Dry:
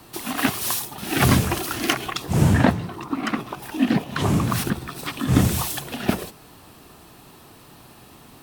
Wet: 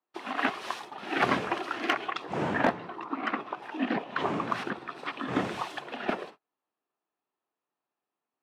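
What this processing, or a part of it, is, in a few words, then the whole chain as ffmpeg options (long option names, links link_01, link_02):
walkie-talkie: -af "highpass=410,lowpass=2300,asoftclip=type=hard:threshold=-12.5dB,agate=range=-36dB:threshold=-44dB:ratio=16:detection=peak,volume=-2dB"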